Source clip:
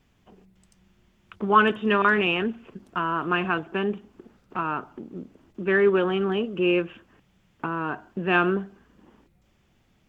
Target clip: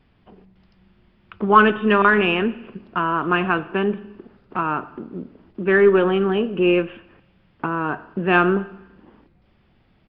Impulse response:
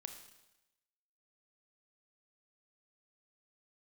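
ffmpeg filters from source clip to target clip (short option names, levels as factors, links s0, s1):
-filter_complex "[0:a]aeval=exprs='0.531*(cos(1*acos(clip(val(0)/0.531,-1,1)))-cos(1*PI/2))+0.00668*(cos(4*acos(clip(val(0)/0.531,-1,1)))-cos(4*PI/2))':c=same,asplit=2[s0][s1];[1:a]atrim=start_sample=2205,lowpass=2800[s2];[s1][s2]afir=irnorm=-1:irlink=0,volume=0.794[s3];[s0][s3]amix=inputs=2:normalize=0,aresample=11025,aresample=44100,volume=1.26"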